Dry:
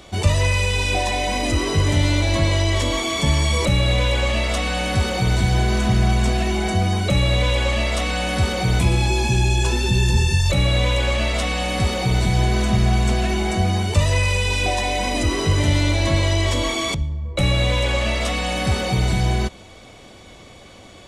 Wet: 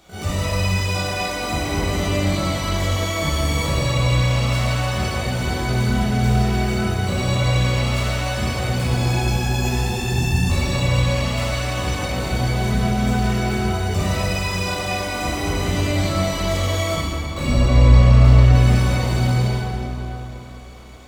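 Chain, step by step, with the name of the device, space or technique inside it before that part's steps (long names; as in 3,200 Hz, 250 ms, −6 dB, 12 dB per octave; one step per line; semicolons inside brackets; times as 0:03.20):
0:17.49–0:18.55: RIAA equalisation playback
shimmer-style reverb (pitch-shifted copies added +12 semitones −5 dB; convolution reverb RT60 3.6 s, pre-delay 10 ms, DRR −8 dB)
level −11.5 dB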